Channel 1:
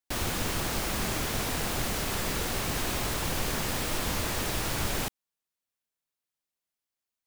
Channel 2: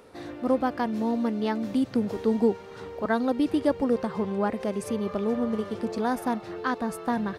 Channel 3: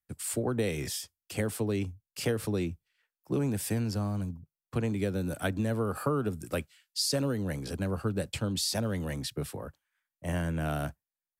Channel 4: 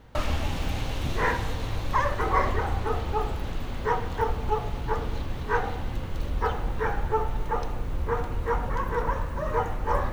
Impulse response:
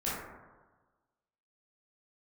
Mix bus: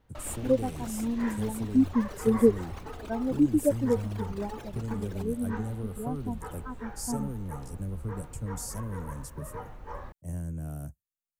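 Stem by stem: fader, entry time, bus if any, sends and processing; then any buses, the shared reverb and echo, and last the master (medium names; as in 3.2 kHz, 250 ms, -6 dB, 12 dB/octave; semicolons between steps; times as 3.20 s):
-8.0 dB, 0.15 s, no send, resonances exaggerated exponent 2; reverb removal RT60 1.7 s; high-pass 220 Hz
+2.5 dB, 0.00 s, no send, spectral contrast expander 2.5:1
-1.0 dB, 0.00 s, no send, FFT filter 100 Hz 0 dB, 3.9 kHz -26 dB, 6.7 kHz -2 dB
-15.0 dB, 0.00 s, no send, none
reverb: none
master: none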